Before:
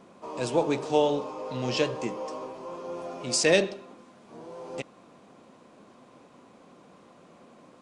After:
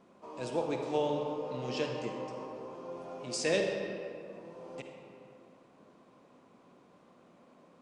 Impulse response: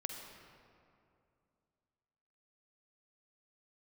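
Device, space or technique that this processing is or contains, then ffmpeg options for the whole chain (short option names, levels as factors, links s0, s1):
swimming-pool hall: -filter_complex "[1:a]atrim=start_sample=2205[s0];[0:a][s0]afir=irnorm=-1:irlink=0,highshelf=f=5300:g=-4.5,volume=0.473"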